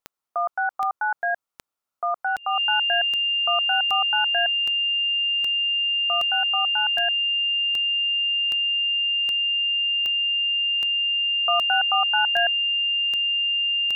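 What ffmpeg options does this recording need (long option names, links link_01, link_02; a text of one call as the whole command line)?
ffmpeg -i in.wav -af "adeclick=threshold=4,bandreject=frequency=2800:width=30,agate=range=-21dB:threshold=-36dB" out.wav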